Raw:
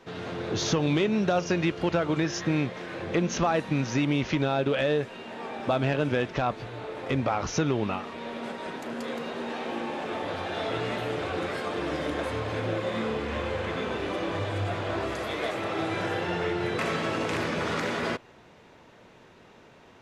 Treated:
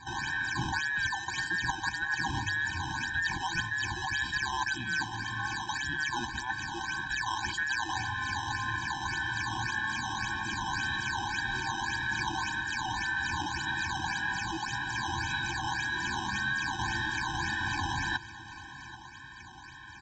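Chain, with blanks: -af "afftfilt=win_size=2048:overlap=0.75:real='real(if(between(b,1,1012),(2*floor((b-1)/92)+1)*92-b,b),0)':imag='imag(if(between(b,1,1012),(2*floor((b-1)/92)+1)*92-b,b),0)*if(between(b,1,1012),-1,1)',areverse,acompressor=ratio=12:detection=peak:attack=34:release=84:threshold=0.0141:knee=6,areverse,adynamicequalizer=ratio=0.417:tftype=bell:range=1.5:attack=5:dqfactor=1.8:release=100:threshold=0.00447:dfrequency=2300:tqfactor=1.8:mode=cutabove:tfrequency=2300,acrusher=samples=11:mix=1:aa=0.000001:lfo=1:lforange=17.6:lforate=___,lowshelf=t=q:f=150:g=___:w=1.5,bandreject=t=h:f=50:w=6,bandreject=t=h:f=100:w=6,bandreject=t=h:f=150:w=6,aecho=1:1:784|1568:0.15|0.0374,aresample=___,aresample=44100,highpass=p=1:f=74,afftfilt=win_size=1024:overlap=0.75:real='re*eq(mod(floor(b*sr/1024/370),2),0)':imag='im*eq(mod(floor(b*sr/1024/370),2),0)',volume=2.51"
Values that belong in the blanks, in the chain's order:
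1.8, 7, 16000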